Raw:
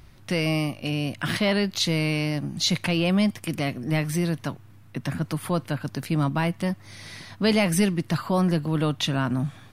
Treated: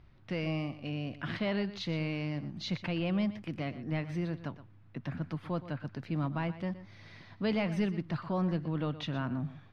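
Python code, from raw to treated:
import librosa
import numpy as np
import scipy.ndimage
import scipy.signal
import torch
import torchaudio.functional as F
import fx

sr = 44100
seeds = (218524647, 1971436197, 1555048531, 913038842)

y = fx.air_absorb(x, sr, metres=230.0)
y = y + 10.0 ** (-14.5 / 20.0) * np.pad(y, (int(120 * sr / 1000.0), 0))[:len(y)]
y = y * librosa.db_to_amplitude(-9.0)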